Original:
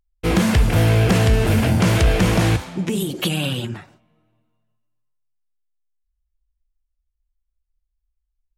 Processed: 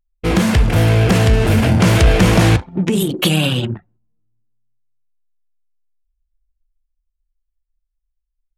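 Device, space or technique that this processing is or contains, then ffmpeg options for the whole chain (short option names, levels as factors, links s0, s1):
voice memo with heavy noise removal: -filter_complex "[0:a]asettb=1/sr,asplit=3[s0][s1][s2];[s0]atrim=end=2.994[s3];[s1]atrim=start=2.99:end=3.73,asetpts=PTS-STARTPTS,afade=t=in:d=0.004:c=qsin,afade=t=out:st=0.736:d=0.004:c=qsin,asplit=2[s4][s5];[s5]adelay=32,volume=0.224[s6];[s4][s6]amix=inputs=2:normalize=0,atrim=end_sample=32634[s7];[s2]atrim=start=3.726[s8];[s3][s7]acrossfade=d=0.004:c1=hsin:c2=qsin[s9];[s9][s8]acrossfade=d=0.004:c1=qsin:c2=hsin,anlmdn=63.1,dynaudnorm=f=240:g=17:m=1.78,volume=1.33"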